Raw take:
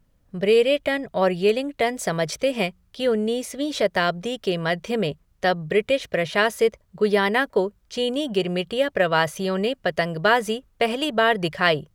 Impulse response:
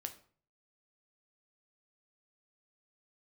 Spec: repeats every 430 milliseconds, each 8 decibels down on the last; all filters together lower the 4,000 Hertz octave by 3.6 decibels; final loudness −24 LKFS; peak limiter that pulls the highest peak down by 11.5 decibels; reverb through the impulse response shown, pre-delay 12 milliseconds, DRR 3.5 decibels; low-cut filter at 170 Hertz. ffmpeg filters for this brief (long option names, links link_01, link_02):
-filter_complex "[0:a]highpass=170,equalizer=frequency=4000:width_type=o:gain=-5.5,alimiter=limit=-15.5dB:level=0:latency=1,aecho=1:1:430|860|1290|1720|2150:0.398|0.159|0.0637|0.0255|0.0102,asplit=2[link_01][link_02];[1:a]atrim=start_sample=2205,adelay=12[link_03];[link_02][link_03]afir=irnorm=-1:irlink=0,volume=-1dB[link_04];[link_01][link_04]amix=inputs=2:normalize=0,volume=0.5dB"